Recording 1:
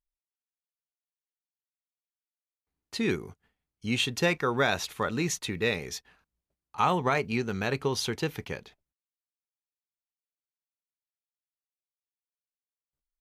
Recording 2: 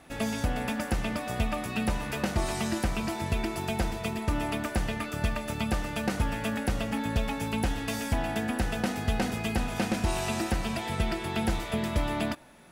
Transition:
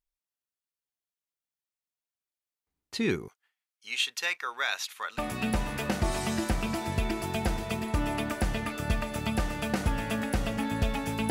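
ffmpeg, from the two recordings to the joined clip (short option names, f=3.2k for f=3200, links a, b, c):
-filter_complex "[0:a]asettb=1/sr,asplit=3[a][b][c];[a]atrim=end=3.284[d];[b]atrim=start=3.28:end=5.18,asetpts=PTS-STARTPTS,afade=t=in:d=0.004:c=qsin,afade=t=out:st=1.896:d=0.004:c=qsin,highpass=1.3k[e];[c]atrim=start=5.176[f];[d][e]acrossfade=d=0.004:c1=hsin:c2=qsin[g];[g][f]acrossfade=d=0.004:c1=qsin:c2=hsin,apad=whole_dur=11.3,atrim=end=11.3,atrim=end=5.182[h];[1:a]atrim=start=1.518:end=7.64[i];[h][i]acrossfade=d=0.004:c1=hsin:c2=hsin"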